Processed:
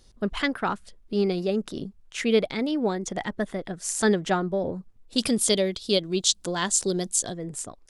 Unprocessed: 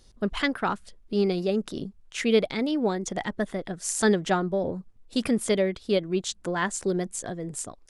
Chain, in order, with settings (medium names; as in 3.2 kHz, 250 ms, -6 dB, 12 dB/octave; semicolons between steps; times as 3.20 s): 5.18–7.34 s: resonant high shelf 2.8 kHz +9.5 dB, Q 1.5